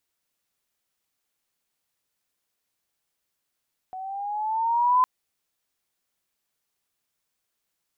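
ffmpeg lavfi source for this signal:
-f lavfi -i "aevalsrc='pow(10,(-15+18*(t/1.11-1))/20)*sin(2*PI*743*1.11/(5.5*log(2)/12)*(exp(5.5*log(2)/12*t/1.11)-1))':d=1.11:s=44100"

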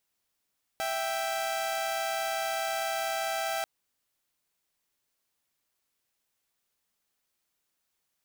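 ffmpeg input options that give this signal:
-f lavfi -i "aevalsrc='0.0335*((2*mod(659.26*t,1)-1)+(2*mod(783.99*t,1)-1))':d=2.84:s=44100"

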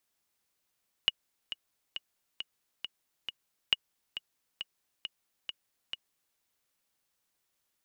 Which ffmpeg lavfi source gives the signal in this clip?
-f lavfi -i "aevalsrc='pow(10,(-10.5-12.5*gte(mod(t,6*60/136),60/136))/20)*sin(2*PI*2890*mod(t,60/136))*exp(-6.91*mod(t,60/136)/0.03)':d=5.29:s=44100"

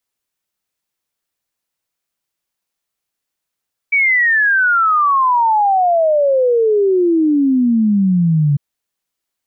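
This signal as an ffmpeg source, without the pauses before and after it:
-f lavfi -i "aevalsrc='0.316*clip(min(t,4.65-t)/0.01,0,1)*sin(2*PI*2300*4.65/log(140/2300)*(exp(log(140/2300)*t/4.65)-1))':d=4.65:s=44100"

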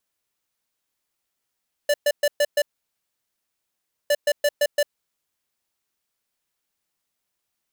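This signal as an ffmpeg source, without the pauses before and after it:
-f lavfi -i "aevalsrc='0.119*(2*lt(mod(584*t,1),0.5)-1)*clip(min(mod(mod(t,2.21),0.17),0.05-mod(mod(t,2.21),0.17))/0.005,0,1)*lt(mod(t,2.21),0.85)':d=4.42:s=44100"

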